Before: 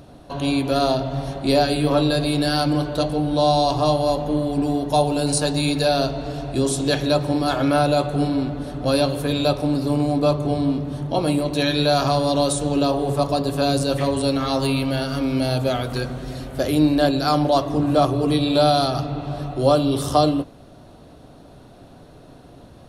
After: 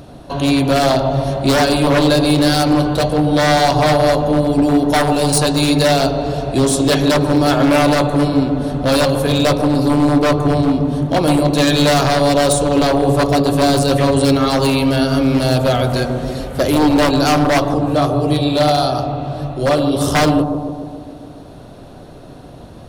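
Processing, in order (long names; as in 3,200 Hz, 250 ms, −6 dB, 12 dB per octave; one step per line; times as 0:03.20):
0:17.74–0:20.01: flanger 1.7 Hz, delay 7.5 ms, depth 5.9 ms, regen −61%
wave folding −15 dBFS
bucket-brigade delay 143 ms, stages 1,024, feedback 64%, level −7 dB
level +7 dB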